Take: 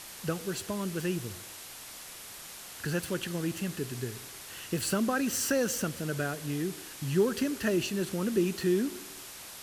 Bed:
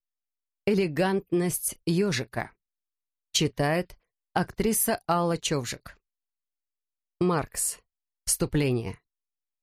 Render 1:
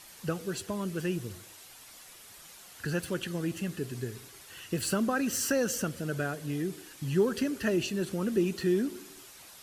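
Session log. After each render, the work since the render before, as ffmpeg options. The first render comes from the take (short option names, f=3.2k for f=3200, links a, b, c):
-af "afftdn=nr=8:nf=-46"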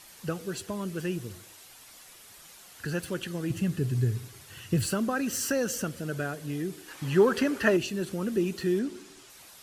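-filter_complex "[0:a]asettb=1/sr,asplit=3[a][b][c];[a]atrim=end=3.504[d];[b]atrim=start=3.5:end=4.86,asetpts=PTS-STARTPTS,afade=t=in:d=0.004:c=qsin,afade=t=out:st=1.356:d=0.004:c=qsin,equalizer=f=110:w=1:g=14.5[e];[c]atrim=start=4.856[f];[d][e]acrossfade=d=0.004:c1=hsin:c2=qsin[g];[g][f]acrossfade=d=0.004:c1=qsin:c2=hsin,asettb=1/sr,asplit=3[h][i][j];[h]atrim=end=6.884[k];[i]atrim=start=6.88:end=7.77,asetpts=PTS-STARTPTS,afade=t=in:d=0.004:c=qsin,afade=t=out:st=0.886:d=0.004:c=qsin,equalizer=f=1.1k:t=o:w=2.9:g=10.5[l];[j]atrim=start=7.766[m];[k][l]acrossfade=d=0.004:c1=hsin:c2=qsin[n];[n][m]acrossfade=d=0.004:c1=qsin:c2=hsin,asettb=1/sr,asplit=3[o][p][q];[o]atrim=end=8.794[r];[p]atrim=start=8.79:end=9.3,asetpts=PTS-STARTPTS,afade=t=in:d=0.004:c=qsin,afade=t=out:st=0.506:d=0.004:c=qsin,lowpass=8.5k[s];[q]atrim=start=9.296[t];[r][s]acrossfade=d=0.004:c1=hsin:c2=qsin[u];[u][t]acrossfade=d=0.004:c1=qsin:c2=hsin"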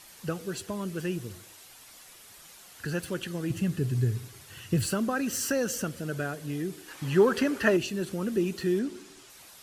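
-af anull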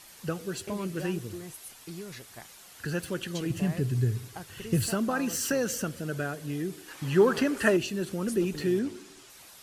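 -filter_complex "[1:a]volume=-16.5dB[a];[0:a][a]amix=inputs=2:normalize=0"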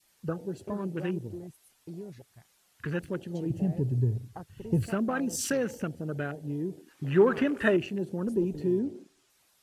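-af "afwtdn=0.0126,adynamicequalizer=threshold=0.00501:dfrequency=1100:dqfactor=1:tfrequency=1100:tqfactor=1:attack=5:release=100:ratio=0.375:range=2:mode=cutabove:tftype=bell"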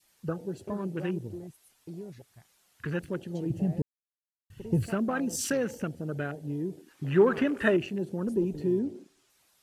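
-filter_complex "[0:a]asplit=3[a][b][c];[a]atrim=end=3.82,asetpts=PTS-STARTPTS,afade=t=out:st=3.816:d=0.004:c=hsin[d];[b]atrim=start=3.82:end=4.5,asetpts=PTS-STARTPTS,volume=0[e];[c]atrim=start=4.5,asetpts=PTS-STARTPTS,afade=t=in:d=0.004:c=hsin[f];[d][e][f]concat=n=3:v=0:a=1"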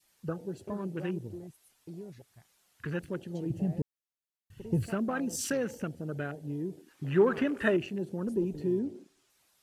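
-af "volume=-2.5dB"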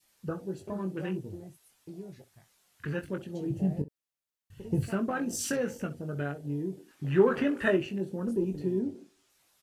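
-af "aecho=1:1:21|64:0.501|0.133"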